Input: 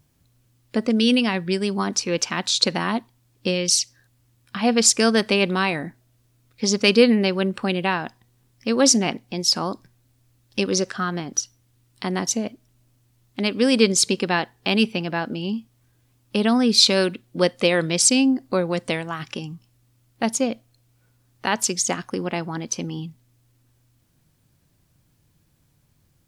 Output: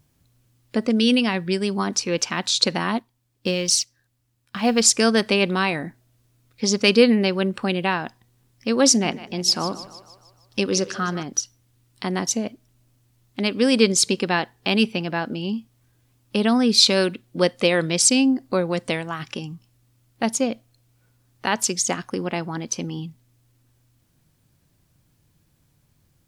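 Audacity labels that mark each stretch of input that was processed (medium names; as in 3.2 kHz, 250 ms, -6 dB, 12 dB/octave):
2.980000	4.820000	companding laws mixed up coded by A
8.960000	11.230000	two-band feedback delay split 390 Hz, lows 83 ms, highs 154 ms, level -14.5 dB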